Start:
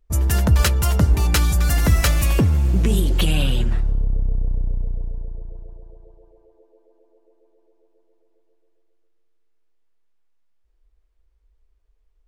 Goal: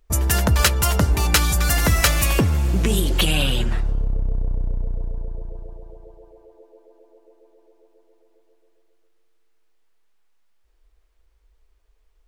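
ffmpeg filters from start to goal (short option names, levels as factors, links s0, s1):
-filter_complex "[0:a]lowshelf=f=360:g=-8,asplit=2[s0][s1];[s1]acompressor=threshold=0.0251:ratio=6,volume=1.19[s2];[s0][s2]amix=inputs=2:normalize=0,volume=1.33"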